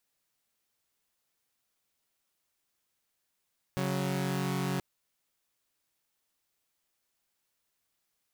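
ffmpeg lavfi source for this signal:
ffmpeg -f lavfi -i "aevalsrc='0.0335*((2*mod(138.59*t,1)-1)+(2*mod(185*t,1)-1))':duration=1.03:sample_rate=44100" out.wav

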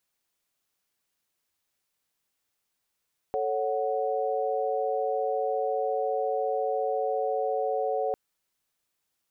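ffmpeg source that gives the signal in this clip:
ffmpeg -f lavfi -i "aevalsrc='0.0335*(sin(2*PI*440*t)+sin(2*PI*554.37*t)+sin(2*PI*739.99*t))':duration=4.8:sample_rate=44100" out.wav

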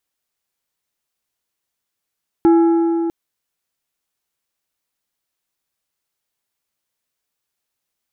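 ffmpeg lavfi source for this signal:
ffmpeg -f lavfi -i "aevalsrc='0.422*pow(10,-3*t/3.71)*sin(2*PI*334*t)+0.119*pow(10,-3*t/2.818)*sin(2*PI*835*t)+0.0335*pow(10,-3*t/2.448)*sin(2*PI*1336*t)+0.00944*pow(10,-3*t/2.289)*sin(2*PI*1670*t)+0.00266*pow(10,-3*t/2.116)*sin(2*PI*2171*t)':duration=0.65:sample_rate=44100" out.wav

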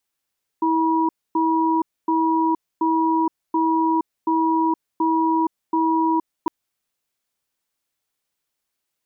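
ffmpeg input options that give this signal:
ffmpeg -f lavfi -i "aevalsrc='0.112*(sin(2*PI*324*t)+sin(2*PI*965*t))*clip(min(mod(t,0.73),0.47-mod(t,0.73))/0.005,0,1)':duration=5.86:sample_rate=44100" out.wav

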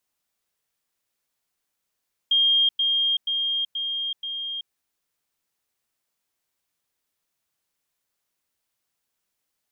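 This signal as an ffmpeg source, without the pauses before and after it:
ffmpeg -f lavfi -i "aevalsrc='pow(10,(-16-3*floor(t/0.48))/20)*sin(2*PI*3220*t)*clip(min(mod(t,0.48),0.38-mod(t,0.48))/0.005,0,1)':duration=2.4:sample_rate=44100" out.wav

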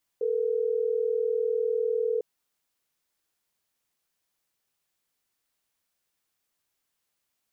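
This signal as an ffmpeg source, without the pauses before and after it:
ffmpeg -f lavfi -i "aevalsrc='0.0473*(sin(2*PI*440*t)+sin(2*PI*480*t))*clip(min(mod(t,6),2-mod(t,6))/0.005,0,1)':duration=3.12:sample_rate=44100" out.wav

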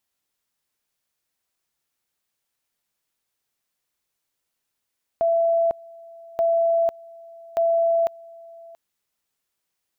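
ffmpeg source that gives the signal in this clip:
ffmpeg -f lavfi -i "aevalsrc='pow(10,(-16.5-24*gte(mod(t,1.18),0.5))/20)*sin(2*PI*669*t)':duration=3.54:sample_rate=44100" out.wav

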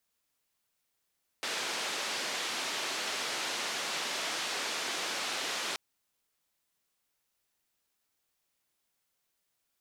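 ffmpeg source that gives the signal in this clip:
ffmpeg -f lavfi -i "anoisesrc=color=white:duration=4.33:sample_rate=44100:seed=1,highpass=frequency=300,lowpass=frequency=4900,volume=-23.7dB" out.wav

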